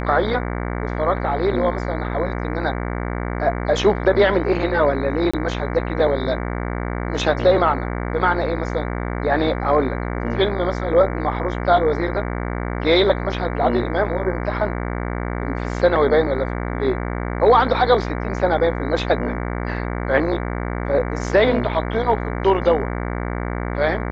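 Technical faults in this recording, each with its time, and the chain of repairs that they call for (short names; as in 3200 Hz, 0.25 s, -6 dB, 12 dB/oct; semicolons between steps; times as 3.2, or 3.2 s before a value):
buzz 60 Hz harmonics 38 -25 dBFS
5.31–5.33 gap 25 ms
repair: de-hum 60 Hz, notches 38; interpolate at 5.31, 25 ms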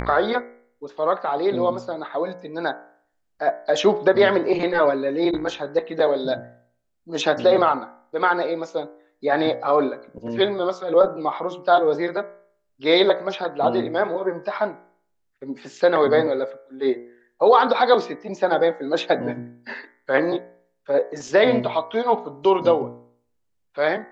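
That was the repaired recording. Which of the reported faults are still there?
none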